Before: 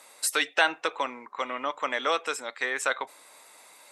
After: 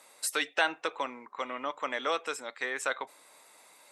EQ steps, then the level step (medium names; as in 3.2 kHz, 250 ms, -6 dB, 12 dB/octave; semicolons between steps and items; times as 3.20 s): bass shelf 450 Hz +3.5 dB; -5.0 dB